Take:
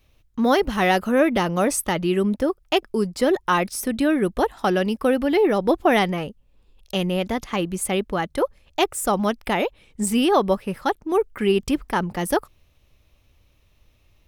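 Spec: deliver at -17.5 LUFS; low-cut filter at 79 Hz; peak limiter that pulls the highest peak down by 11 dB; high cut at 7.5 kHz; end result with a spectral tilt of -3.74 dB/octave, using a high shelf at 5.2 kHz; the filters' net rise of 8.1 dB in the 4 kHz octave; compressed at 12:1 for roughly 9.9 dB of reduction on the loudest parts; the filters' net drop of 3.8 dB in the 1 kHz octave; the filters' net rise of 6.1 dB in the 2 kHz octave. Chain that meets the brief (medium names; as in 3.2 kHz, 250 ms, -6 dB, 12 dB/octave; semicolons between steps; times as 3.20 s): high-pass 79 Hz; low-pass 7.5 kHz; peaking EQ 1 kHz -7.5 dB; peaking EQ 2 kHz +7 dB; peaking EQ 4 kHz +6.5 dB; treble shelf 5.2 kHz +6.5 dB; compression 12:1, threshold -22 dBFS; trim +11.5 dB; peak limiter -7.5 dBFS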